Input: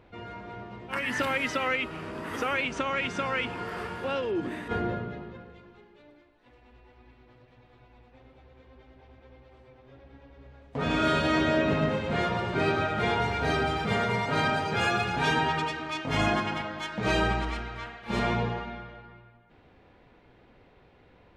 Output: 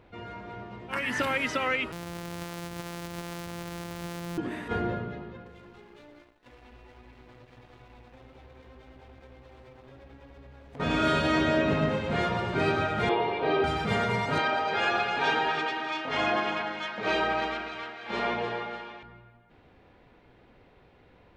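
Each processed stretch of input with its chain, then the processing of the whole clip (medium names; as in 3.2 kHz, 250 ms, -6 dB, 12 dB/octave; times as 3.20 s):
1.92–4.38 s: sorted samples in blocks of 256 samples + compression 10:1, threshold -33 dBFS
5.46–10.80 s: waveshaping leveller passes 2 + compression 4:1, threshold -46 dBFS
13.09–13.64 s: cabinet simulation 220–3600 Hz, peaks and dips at 230 Hz -7 dB, 360 Hz +9 dB, 540 Hz +5 dB, 1.1 kHz +4 dB, 1.8 kHz -6 dB + band-stop 1.4 kHz, Q 8.8
14.38–19.03 s: three-band isolator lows -17 dB, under 280 Hz, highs -19 dB, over 5.5 kHz + two-band feedback delay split 1.6 kHz, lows 143 ms, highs 295 ms, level -8 dB
whole clip: none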